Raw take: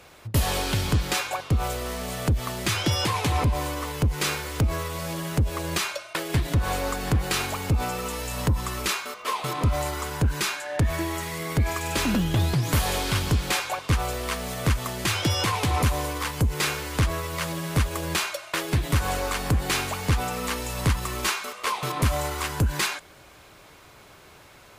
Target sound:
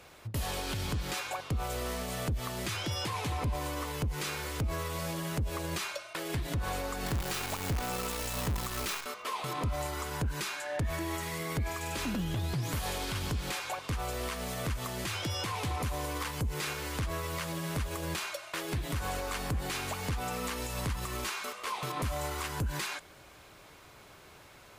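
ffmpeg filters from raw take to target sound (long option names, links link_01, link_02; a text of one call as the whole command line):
ffmpeg -i in.wav -filter_complex "[0:a]alimiter=limit=-21.5dB:level=0:latency=1:release=122,asettb=1/sr,asplit=3[link_01][link_02][link_03];[link_01]atrim=end=7.064[link_04];[link_02]atrim=start=7.06:end=9.06,asetpts=PTS-STARTPTS,afade=type=in:duration=0.004:curve=qsin,afade=type=out:start_time=1.996:duration=0.004:curve=qsin,acrusher=bits=6:dc=4:mix=0:aa=0.000001[link_05];[link_03]atrim=start=9.056[link_06];[link_04][link_05]acrossfade=duration=0.004:curve1=hsin:curve2=qsin[link_07];[link_07][link_06]acrossfade=duration=0.004:curve1=qsin:curve2=hsin,volume=-4dB" out.wav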